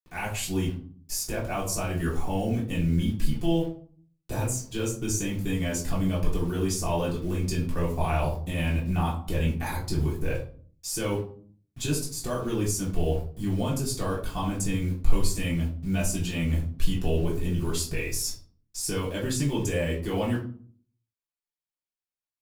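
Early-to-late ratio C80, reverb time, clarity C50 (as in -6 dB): 12.0 dB, 0.45 s, 7.5 dB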